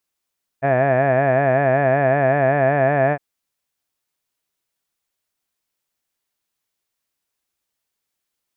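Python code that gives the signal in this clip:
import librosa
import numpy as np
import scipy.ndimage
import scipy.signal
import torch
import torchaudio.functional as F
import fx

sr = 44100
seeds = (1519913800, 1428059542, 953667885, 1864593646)

y = fx.vowel(sr, seeds[0], length_s=2.56, word='had', hz=132.0, glide_st=1.0, vibrato_hz=5.3, vibrato_st=1.05)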